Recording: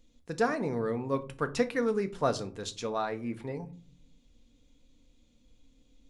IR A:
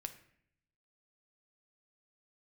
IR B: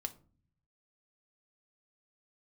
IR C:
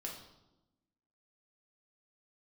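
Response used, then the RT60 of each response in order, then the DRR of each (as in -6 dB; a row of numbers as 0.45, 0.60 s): B; 0.65, 0.40, 0.95 s; 7.0, 7.0, -1.5 dB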